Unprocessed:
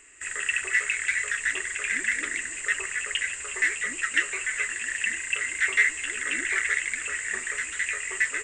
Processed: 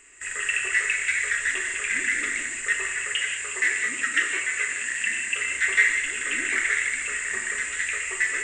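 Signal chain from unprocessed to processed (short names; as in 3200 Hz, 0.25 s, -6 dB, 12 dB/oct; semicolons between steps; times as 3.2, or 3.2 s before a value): 2.97–5.35 HPF 79 Hz 12 dB/oct; non-linear reverb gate 0.23 s flat, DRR 2 dB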